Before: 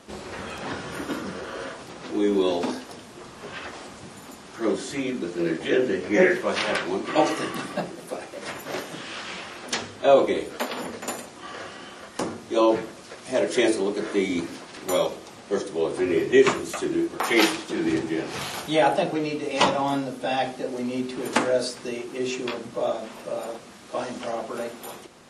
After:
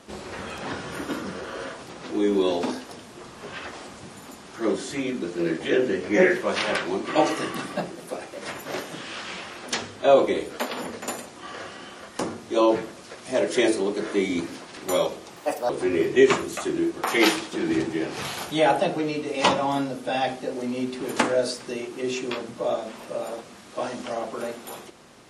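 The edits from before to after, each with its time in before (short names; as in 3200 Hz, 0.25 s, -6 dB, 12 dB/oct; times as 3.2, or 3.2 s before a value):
15.36–15.86 speed 149%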